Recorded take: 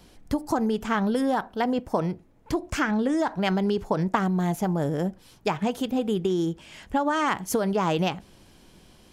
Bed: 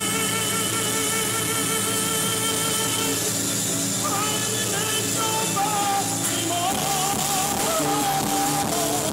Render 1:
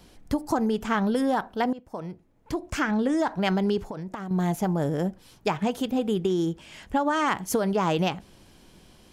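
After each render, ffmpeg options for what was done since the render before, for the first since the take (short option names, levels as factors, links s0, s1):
-filter_complex "[0:a]asettb=1/sr,asplit=3[s0][s1][s2];[s0]atrim=end=3.824[s3];[s1]atrim=start=3.82:end=4.31,asetpts=PTS-STARTPTS,afade=t=in:d=0.004:c=qsin,afade=t=out:st=0.486:d=0.004:c=qsin,acompressor=threshold=0.0251:ratio=5:attack=3.2:release=140:knee=1:detection=peak[s4];[s2]atrim=start=4.306[s5];[s3][s4]acrossfade=d=0.004:c1=hsin:c2=qsin[s6];[s6][s5]acrossfade=d=0.004:c1=qsin:c2=hsin,asplit=2[s7][s8];[s7]atrim=end=1.73,asetpts=PTS-STARTPTS,afade=t=out:st=1.726:d=0.004:c=hsin:silence=0.133352[s9];[s8]atrim=start=1.73,asetpts=PTS-STARTPTS,afade=t=in:d=1.25:silence=0.133352[s10];[s9][s10]concat=n=2:v=0:a=1"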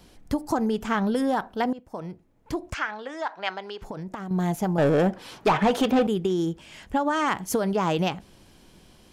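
-filter_complex "[0:a]asplit=3[s0][s1][s2];[s0]afade=t=out:st=2.73:d=0.02[s3];[s1]highpass=770,lowpass=4500,afade=t=in:st=2.73:d=0.02,afade=t=out:st=3.81:d=0.02[s4];[s2]afade=t=in:st=3.81:d=0.02[s5];[s3][s4][s5]amix=inputs=3:normalize=0,asettb=1/sr,asplit=3[s6][s7][s8];[s6]atrim=end=4.784[s9];[s7]atrim=start=4.78:end=6.07,asetpts=PTS-STARTPTS,afade=t=in:d=0.004:c=qsin,afade=t=out:st=1.286:d=0.004:c=qsin,asplit=2[s10][s11];[s11]highpass=f=720:p=1,volume=15.8,asoftclip=type=tanh:threshold=0.282[s12];[s10][s12]amix=inputs=2:normalize=0,lowpass=f=1900:p=1,volume=0.501[s13];[s8]atrim=start=6.066[s14];[s9][s13]acrossfade=d=0.004:c1=hsin:c2=qsin[s15];[s15][s14]acrossfade=d=0.004:c1=qsin:c2=hsin"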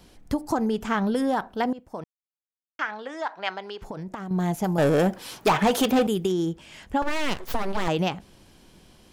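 -filter_complex "[0:a]asettb=1/sr,asplit=3[s0][s1][s2];[s0]atrim=end=4.644[s3];[s1]atrim=start=4.64:end=6.32,asetpts=PTS-STARTPTS,afade=t=in:d=0.004:c=qsin,afade=t=out:st=1.676:d=0.004:c=qsin,aemphasis=mode=production:type=50kf[s4];[s2]atrim=start=6.316[s5];[s3][s4]acrossfade=d=0.004:c1=hsin:c2=qsin[s6];[s6][s5]acrossfade=d=0.004:c1=qsin:c2=hsin,asettb=1/sr,asplit=3[s7][s8][s9];[s7]atrim=end=7.024[s10];[s8]atrim=start=7.02:end=7.88,asetpts=PTS-STARTPTS,afade=t=in:d=0.004:c=qsin,afade=t=out:st=0.856:d=0.004:c=qsin,aeval=exprs='abs(val(0))':c=same[s11];[s9]atrim=start=7.876[s12];[s10][s11]acrossfade=d=0.004:c1=hsin:c2=qsin[s13];[s13][s12]acrossfade=d=0.004:c1=qsin:c2=hsin,asplit=3[s14][s15][s16];[s14]atrim=end=2.04,asetpts=PTS-STARTPTS,afade=t=out:st=2.036:d=0.004:c=hsin[s17];[s15]atrim=start=2.04:end=2.79,asetpts=PTS-STARTPTS,volume=0[s18];[s16]atrim=start=2.79,asetpts=PTS-STARTPTS,afade=t=in:d=0.004:c=hsin[s19];[s17][s18][s19]concat=n=3:v=0:a=1"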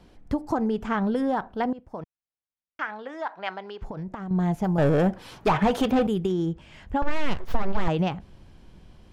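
-af "lowpass=f=1900:p=1,asubboost=boost=2:cutoff=170"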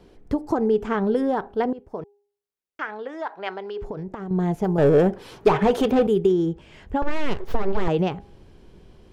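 -af "equalizer=f=410:w=2.8:g=11,bandreject=f=407.2:t=h:w=4,bandreject=f=814.4:t=h:w=4"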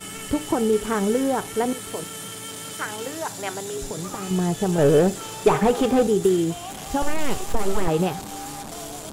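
-filter_complex "[1:a]volume=0.251[s0];[0:a][s0]amix=inputs=2:normalize=0"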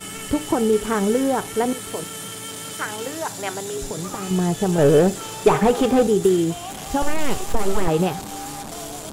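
-af "volume=1.26"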